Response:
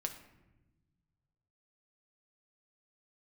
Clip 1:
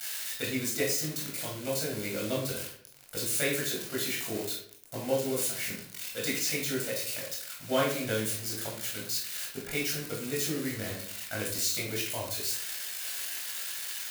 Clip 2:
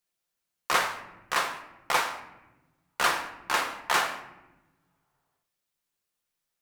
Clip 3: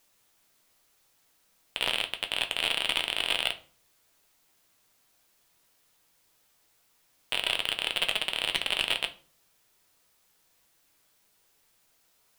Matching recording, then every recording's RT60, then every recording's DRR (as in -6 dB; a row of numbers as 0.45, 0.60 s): 2; 0.60, 1.1, 0.40 s; -5.0, 4.0, 6.0 dB